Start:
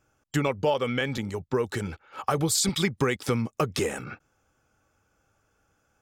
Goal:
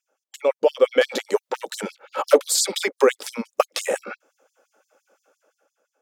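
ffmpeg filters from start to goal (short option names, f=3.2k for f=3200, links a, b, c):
-filter_complex "[0:a]asettb=1/sr,asplit=3[a][b][c];[a]atrim=end=1.014[d];[b]atrim=start=1.01:end=2.48,asetpts=PTS-STARTPTS,afade=t=in:d=0.004:c=qsin,afade=t=out:st=1.466:d=0.004:c=qsin,aeval=exprs='0.211*(cos(1*acos(clip(val(0)/0.211,-1,1)))-cos(1*PI/2))+0.0335*(cos(5*acos(clip(val(0)/0.211,-1,1)))-cos(5*PI/2))':c=same[e];[c]atrim=start=2.476[f];[d][e]acrossfade=d=0.004:c1=hsin:c2=qsin[g];[g][f]acrossfade=d=0.004:c1=qsin:c2=hsin,dynaudnorm=f=160:g=9:m=11dB,equalizer=f=540:w=1.9:g=14,afftfilt=real='re*gte(b*sr/1024,200*pow(4200/200,0.5+0.5*sin(2*PI*5.8*pts/sr)))':imag='im*gte(b*sr/1024,200*pow(4200/200,0.5+0.5*sin(2*PI*5.8*pts/sr)))':win_size=1024:overlap=0.75,volume=-5dB"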